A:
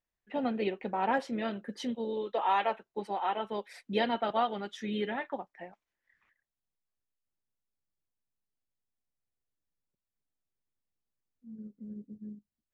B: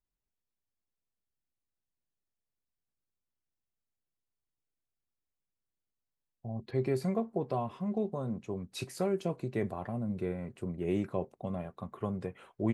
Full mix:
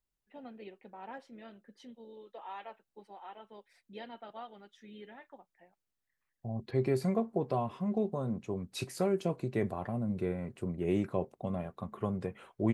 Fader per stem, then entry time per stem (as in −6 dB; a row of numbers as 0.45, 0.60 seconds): −16.5, +1.0 decibels; 0.00, 0.00 seconds